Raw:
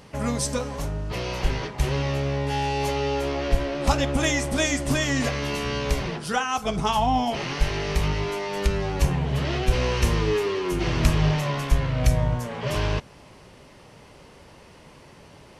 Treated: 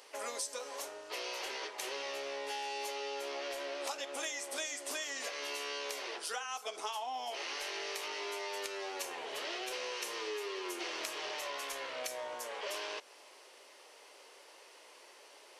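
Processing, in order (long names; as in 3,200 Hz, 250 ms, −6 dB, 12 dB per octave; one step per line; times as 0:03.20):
inverse Chebyshev high-pass filter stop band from 190 Hz, stop band 40 dB
high-shelf EQ 2,500 Hz +8.5 dB
downward compressor, threshold −28 dBFS, peak gain reduction 11.5 dB
level −8.5 dB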